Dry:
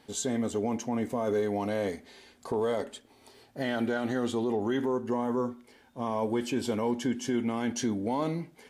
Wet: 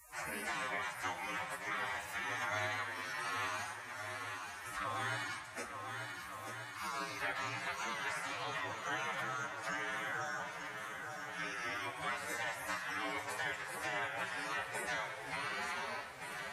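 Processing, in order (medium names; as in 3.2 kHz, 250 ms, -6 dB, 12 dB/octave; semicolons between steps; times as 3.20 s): spectral replace 0.93–1.24 s, 1.1–4.9 kHz after; frequency weighting D; spectral gate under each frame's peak -25 dB weak; resonant high shelf 2.5 kHz -10 dB, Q 1.5; shuffle delay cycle 776 ms, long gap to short 1.5:1, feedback 32%, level -12 dB; time stretch by phase-locked vocoder 1.9×; on a send at -12 dB: reverberation RT60 1.1 s, pre-delay 34 ms; on the sum: three bands compressed up and down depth 70%; trim +10 dB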